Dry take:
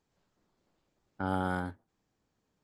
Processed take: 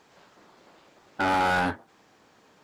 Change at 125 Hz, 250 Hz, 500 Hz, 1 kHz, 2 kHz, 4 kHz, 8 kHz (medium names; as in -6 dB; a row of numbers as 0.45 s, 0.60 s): +0.5 dB, +3.5 dB, +7.5 dB, +11.5 dB, +13.5 dB, +16.0 dB, no reading